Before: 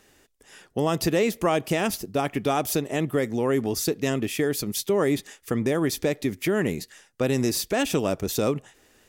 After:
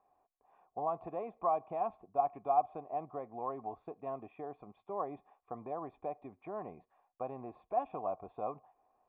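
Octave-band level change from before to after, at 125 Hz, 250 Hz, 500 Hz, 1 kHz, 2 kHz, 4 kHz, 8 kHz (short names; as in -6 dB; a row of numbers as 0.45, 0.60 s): -25.0 dB, -23.5 dB, -14.0 dB, -3.0 dB, -30.5 dB, under -40 dB, under -40 dB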